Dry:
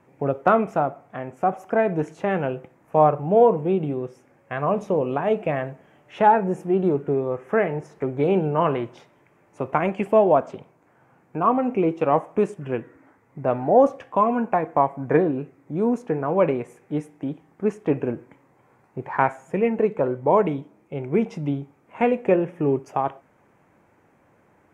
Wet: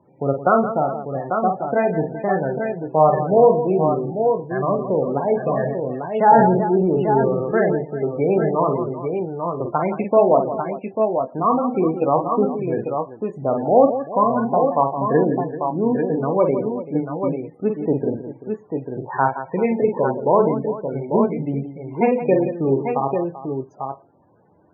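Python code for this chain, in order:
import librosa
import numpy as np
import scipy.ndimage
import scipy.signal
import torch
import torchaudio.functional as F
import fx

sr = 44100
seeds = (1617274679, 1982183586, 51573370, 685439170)

y = fx.echo_multitap(x, sr, ms=(44, 169, 388, 844, 867), db=(-5.5, -10.5, -14.5, -6.0, -13.0))
y = fx.spec_topn(y, sr, count=32)
y = fx.sustainer(y, sr, db_per_s=32.0, at=(5.41, 7.75))
y = y * 10.0 ** (1.0 / 20.0)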